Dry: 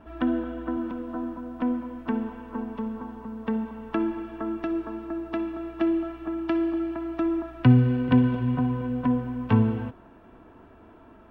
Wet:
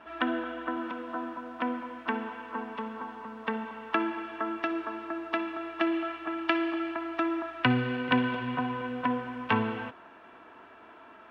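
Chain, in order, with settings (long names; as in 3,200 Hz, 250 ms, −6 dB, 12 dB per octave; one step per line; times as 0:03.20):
0:05.91–0:06.92: dynamic equaliser 2,700 Hz, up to +3 dB, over −47 dBFS, Q 0.96
resonant band-pass 2,300 Hz, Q 0.7
level +8.5 dB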